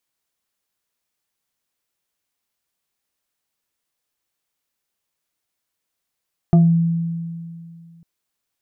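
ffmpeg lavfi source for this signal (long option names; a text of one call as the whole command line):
ffmpeg -f lavfi -i "aevalsrc='0.422*pow(10,-3*t/2.4)*sin(2*PI*167*t+0.53*pow(10,-3*t/0.32)*sin(2*PI*3.09*167*t))':duration=1.5:sample_rate=44100" out.wav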